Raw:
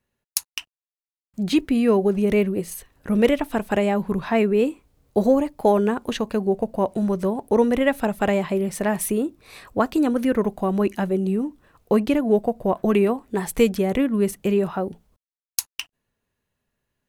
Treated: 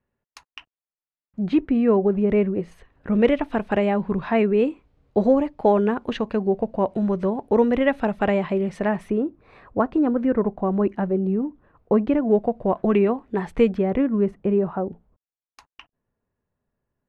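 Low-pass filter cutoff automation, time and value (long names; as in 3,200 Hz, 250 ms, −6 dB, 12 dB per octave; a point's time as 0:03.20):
0:02.29 1,700 Hz
0:03.51 3,000 Hz
0:08.77 3,000 Hz
0:09.25 1,400 Hz
0:12.00 1,400 Hz
0:12.46 2,500 Hz
0:13.39 2,500 Hz
0:14.41 1,200 Hz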